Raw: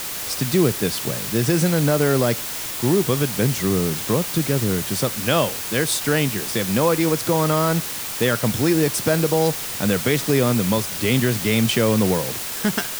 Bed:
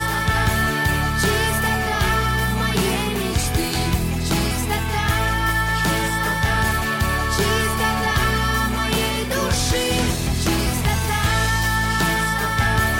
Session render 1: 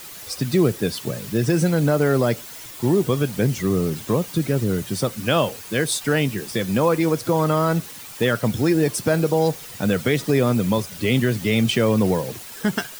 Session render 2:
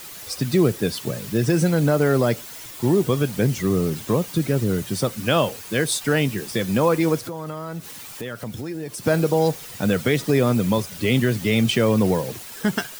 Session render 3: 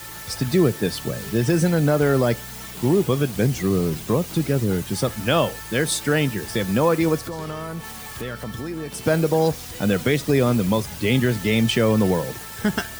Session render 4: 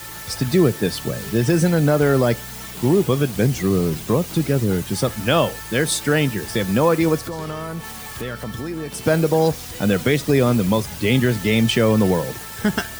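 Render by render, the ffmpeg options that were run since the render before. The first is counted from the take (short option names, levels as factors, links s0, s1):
-af "afftdn=nr=11:nf=-29"
-filter_complex "[0:a]asettb=1/sr,asplit=3[s0][s1][s2];[s0]atrim=end=7.184[s3];[s1]atrim=start=7.18:end=9.06,asetpts=PTS-STARTPTS,afade=t=in:d=0.004:c=qsin,afade=t=out:st=1.876:d=0.004:c=qsin,acompressor=threshold=0.0282:ratio=3:attack=3.2:release=140:knee=1:detection=peak[s4];[s2]atrim=start=9.056[s5];[s3][s4]acrossfade=d=0.004:c1=hsin:c2=qsin[s6];[s6][s5]acrossfade=d=0.004:c1=qsin:c2=hsin"
-filter_complex "[1:a]volume=0.106[s0];[0:a][s0]amix=inputs=2:normalize=0"
-af "volume=1.26"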